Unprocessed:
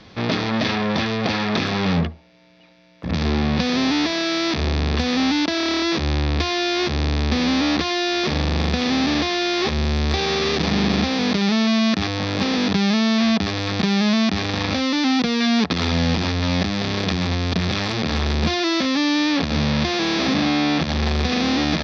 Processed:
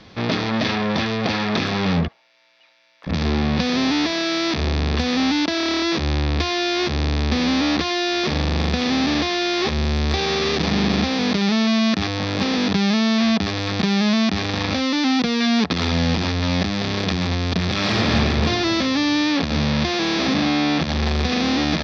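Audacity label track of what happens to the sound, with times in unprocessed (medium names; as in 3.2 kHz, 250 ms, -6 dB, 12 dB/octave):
2.080000	3.070000	high-pass 950 Hz
17.720000	18.120000	reverb throw, RT60 3 s, DRR -4 dB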